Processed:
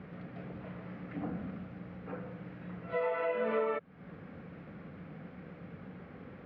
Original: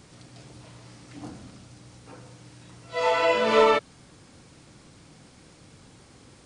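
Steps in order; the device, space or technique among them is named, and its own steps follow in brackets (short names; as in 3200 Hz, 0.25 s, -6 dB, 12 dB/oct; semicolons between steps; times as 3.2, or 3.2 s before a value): bass amplifier (compressor 5:1, threshold -36 dBFS, peak gain reduction 19 dB; speaker cabinet 83–2100 Hz, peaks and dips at 120 Hz -8 dB, 180 Hz +8 dB, 330 Hz -5 dB, 480 Hz +3 dB, 940 Hz -7 dB); gain +4.5 dB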